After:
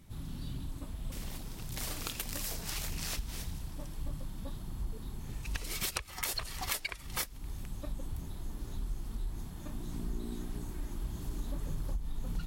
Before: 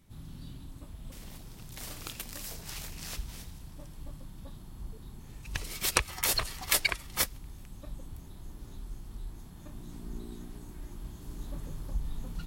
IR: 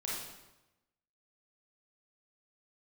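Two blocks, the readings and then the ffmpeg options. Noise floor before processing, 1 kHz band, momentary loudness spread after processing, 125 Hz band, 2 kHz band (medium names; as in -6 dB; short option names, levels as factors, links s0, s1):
-48 dBFS, -4.0 dB, 9 LU, +2.5 dB, -6.5 dB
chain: -af "acompressor=threshold=0.0158:ratio=16,aphaser=in_gain=1:out_gain=1:delay=4.7:decay=0.25:speed=1.7:type=triangular,volume=1.58"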